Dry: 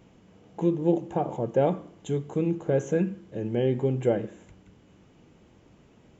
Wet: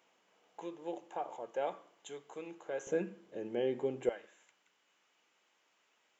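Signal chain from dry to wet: high-pass 800 Hz 12 dB/octave, from 2.87 s 360 Hz, from 4.09 s 1.2 kHz; trim -5.5 dB

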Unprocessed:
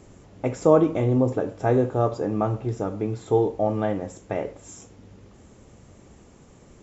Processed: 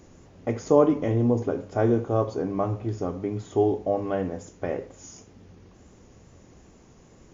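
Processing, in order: wow and flutter 25 cents; tape speed -7%; hum notches 50/100/150/200 Hz; trim -1.5 dB

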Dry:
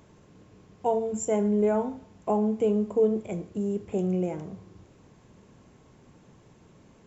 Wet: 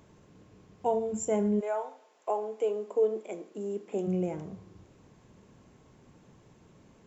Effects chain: 1.59–4.06 s: high-pass 580 Hz -> 220 Hz 24 dB/octave; trim -2.5 dB

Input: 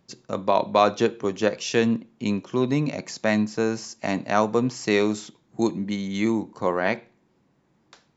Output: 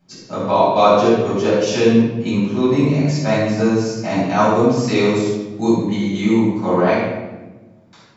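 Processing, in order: dynamic bell 1.8 kHz, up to -6 dB, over -41 dBFS, Q 2.9; simulated room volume 650 m³, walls mixed, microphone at 7.9 m; trim -7.5 dB

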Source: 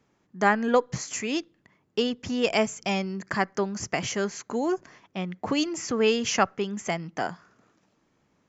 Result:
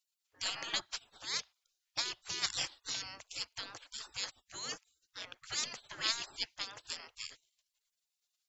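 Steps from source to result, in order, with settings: spectral gate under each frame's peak -30 dB weak; dynamic bell 4.5 kHz, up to +6 dB, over -57 dBFS, Q 1.1; trim +5 dB

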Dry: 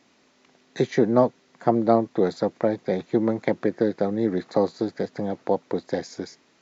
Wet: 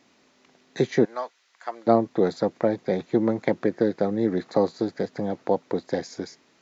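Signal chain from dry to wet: 1.05–1.87 s: high-pass 1.3 kHz 12 dB/octave

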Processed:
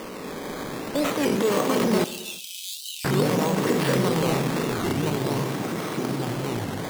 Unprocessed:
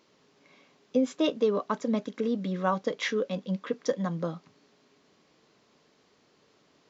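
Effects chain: spectral levelling over time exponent 0.4; transient shaper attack -4 dB, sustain +7 dB; ever faster or slower copies 242 ms, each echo -3 st, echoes 3; decimation with a swept rate 11×, swing 100% 0.48 Hz; 2.04–3.07 s: rippled Chebyshev high-pass 2.6 kHz, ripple 3 dB; bucket-brigade echo 67 ms, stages 2048, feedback 45%, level -19 dB; on a send at -17 dB: reverberation, pre-delay 3 ms; on the sum: warped record 33 1/3 rpm, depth 250 cents; trim -1 dB

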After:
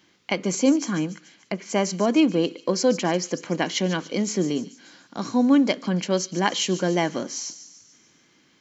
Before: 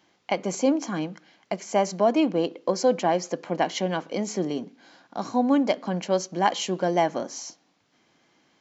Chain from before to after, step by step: 0.95–1.70 s: low-pass that closes with the level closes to 2.6 kHz, closed at -27.5 dBFS; peaking EQ 730 Hz -11 dB 1 oct; feedback echo behind a high-pass 145 ms, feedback 53%, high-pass 4.6 kHz, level -10 dB; trim +5.5 dB

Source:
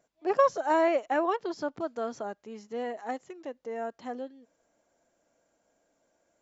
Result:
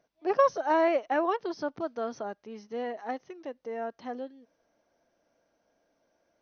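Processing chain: brick-wall FIR low-pass 6.4 kHz

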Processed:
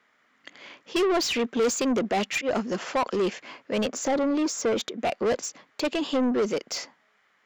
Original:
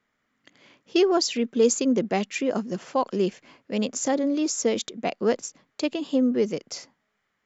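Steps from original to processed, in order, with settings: 1.92–2.49 s: slow attack 112 ms; 3.88–4.99 s: treble shelf 2.4 kHz -7.5 dB; overdrive pedal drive 25 dB, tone 3.5 kHz, clips at -9 dBFS; trim -7 dB

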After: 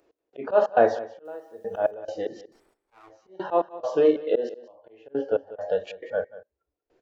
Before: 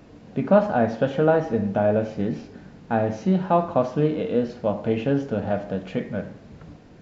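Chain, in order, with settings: 2.47–3.11 s: comb filter that takes the minimum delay 0.88 ms; hum notches 50/100/150/200/250/300/350/400/450 Hz; spectral noise reduction 19 dB; resonant low shelf 270 Hz -11.5 dB, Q 3; slow attack 135 ms; trance gate "x..xxx.xx......x" 137 bpm -24 dB; 1.25–1.91 s: word length cut 12-bit, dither none; 5.07–5.61 s: distance through air 280 m; delay 187 ms -17 dB; trim +2.5 dB

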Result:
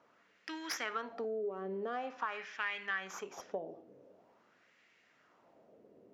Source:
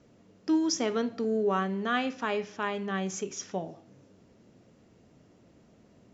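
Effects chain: tracing distortion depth 0.094 ms; in parallel at -1.5 dB: peak limiter -22 dBFS, peak gain reduction 7 dB; on the sum: LFO band-pass sine 0.46 Hz 430–2100 Hz; compression 6:1, threshold -35 dBFS, peak gain reduction 13.5 dB; tilt shelf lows -4 dB, about 1.4 kHz; trim +2.5 dB

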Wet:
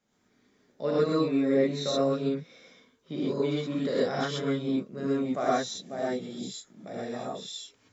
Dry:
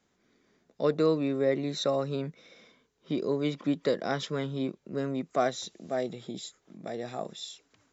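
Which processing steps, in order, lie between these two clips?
gated-style reverb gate 150 ms rising, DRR -7 dB; trim -6.5 dB

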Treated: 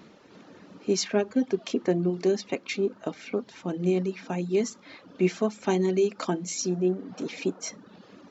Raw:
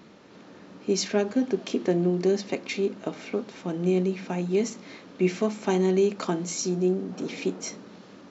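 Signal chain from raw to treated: reverb removal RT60 0.79 s

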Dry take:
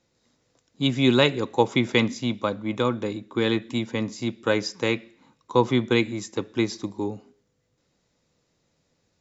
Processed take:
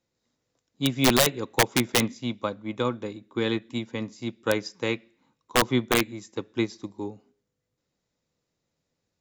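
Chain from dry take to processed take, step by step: integer overflow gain 10 dB; upward expansion 1.5:1, over -35 dBFS

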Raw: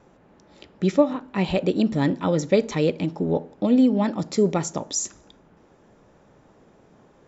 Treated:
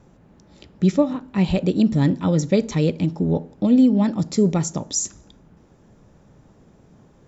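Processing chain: tone controls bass +11 dB, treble +6 dB; trim -2.5 dB

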